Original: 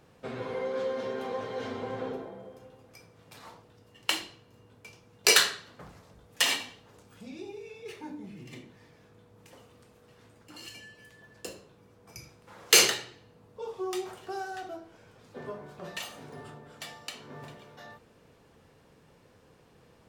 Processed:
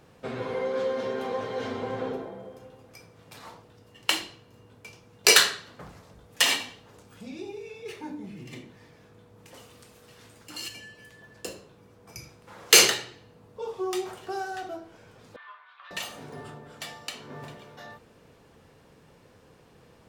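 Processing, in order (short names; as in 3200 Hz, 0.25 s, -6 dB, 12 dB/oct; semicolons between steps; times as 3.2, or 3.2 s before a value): 9.54–10.68 high shelf 2200 Hz +9 dB; 15.36–15.91 Chebyshev band-pass 1100–3700 Hz, order 3; gain +3.5 dB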